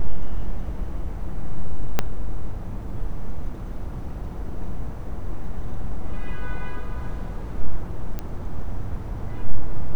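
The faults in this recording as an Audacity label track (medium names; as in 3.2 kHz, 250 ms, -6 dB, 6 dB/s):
1.990000	1.990000	pop -5 dBFS
8.190000	8.190000	pop -16 dBFS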